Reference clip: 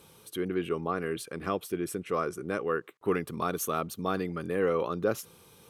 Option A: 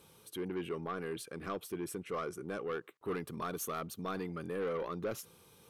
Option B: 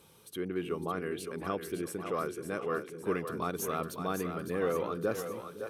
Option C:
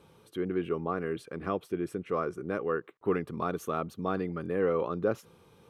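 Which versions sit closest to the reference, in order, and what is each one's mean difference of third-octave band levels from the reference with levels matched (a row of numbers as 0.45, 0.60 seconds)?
A, C, B; 2.5, 3.5, 5.0 decibels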